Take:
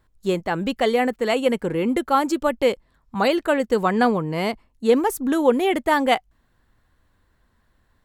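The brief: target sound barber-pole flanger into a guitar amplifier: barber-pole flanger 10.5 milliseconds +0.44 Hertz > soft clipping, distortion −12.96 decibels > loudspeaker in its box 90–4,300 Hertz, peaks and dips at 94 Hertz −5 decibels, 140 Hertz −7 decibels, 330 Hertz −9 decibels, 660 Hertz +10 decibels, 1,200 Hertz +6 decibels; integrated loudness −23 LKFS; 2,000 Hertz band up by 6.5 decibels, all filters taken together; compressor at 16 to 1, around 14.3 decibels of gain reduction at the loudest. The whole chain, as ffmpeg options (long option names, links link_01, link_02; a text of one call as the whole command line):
ffmpeg -i in.wav -filter_complex "[0:a]equalizer=frequency=2000:width_type=o:gain=7,acompressor=threshold=-25dB:ratio=16,asplit=2[link_01][link_02];[link_02]adelay=10.5,afreqshift=0.44[link_03];[link_01][link_03]amix=inputs=2:normalize=1,asoftclip=threshold=-28.5dB,highpass=90,equalizer=frequency=94:width_type=q:width=4:gain=-5,equalizer=frequency=140:width_type=q:width=4:gain=-7,equalizer=frequency=330:width_type=q:width=4:gain=-9,equalizer=frequency=660:width_type=q:width=4:gain=10,equalizer=frequency=1200:width_type=q:width=4:gain=6,lowpass=frequency=4300:width=0.5412,lowpass=frequency=4300:width=1.3066,volume=11.5dB" out.wav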